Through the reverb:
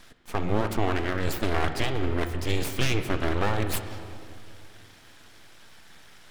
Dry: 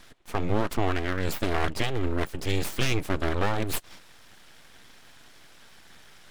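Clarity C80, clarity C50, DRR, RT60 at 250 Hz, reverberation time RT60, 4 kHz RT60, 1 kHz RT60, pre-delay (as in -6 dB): 9.5 dB, 8.5 dB, 7.5 dB, 3.0 s, 2.5 s, 2.0 s, 2.3 s, 21 ms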